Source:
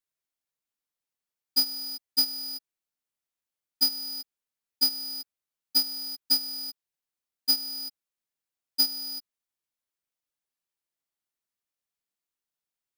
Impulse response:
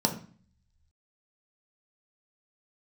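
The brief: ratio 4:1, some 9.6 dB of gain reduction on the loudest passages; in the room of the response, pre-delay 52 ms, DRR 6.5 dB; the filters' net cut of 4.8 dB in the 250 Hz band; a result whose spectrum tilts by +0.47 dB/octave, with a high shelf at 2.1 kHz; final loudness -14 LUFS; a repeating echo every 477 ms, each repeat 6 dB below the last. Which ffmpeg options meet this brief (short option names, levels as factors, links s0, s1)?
-filter_complex "[0:a]equalizer=f=250:t=o:g=-5,highshelf=f=2100:g=-6,acompressor=threshold=0.0158:ratio=4,aecho=1:1:477|954|1431|1908|2385|2862:0.501|0.251|0.125|0.0626|0.0313|0.0157,asplit=2[s0][s1];[1:a]atrim=start_sample=2205,adelay=52[s2];[s1][s2]afir=irnorm=-1:irlink=0,volume=0.158[s3];[s0][s3]amix=inputs=2:normalize=0,volume=13.3"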